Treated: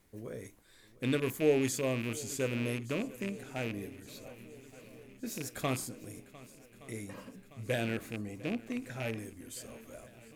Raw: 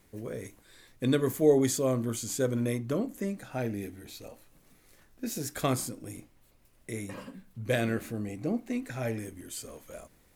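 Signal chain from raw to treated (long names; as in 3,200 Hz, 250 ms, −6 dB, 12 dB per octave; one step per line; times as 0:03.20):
loose part that buzzes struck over −32 dBFS, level −24 dBFS
feedback echo with a long and a short gap by turns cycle 1,169 ms, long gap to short 1.5 to 1, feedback 63%, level −20 dB
level −5 dB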